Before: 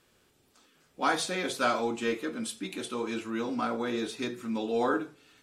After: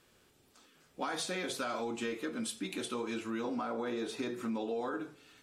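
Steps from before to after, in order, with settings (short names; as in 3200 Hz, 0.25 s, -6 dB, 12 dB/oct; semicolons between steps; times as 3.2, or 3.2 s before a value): 3.44–4.81 bell 660 Hz +6.5 dB 2.5 oct; limiter -21 dBFS, peak gain reduction 7.5 dB; compressor, threshold -33 dBFS, peak gain reduction 8 dB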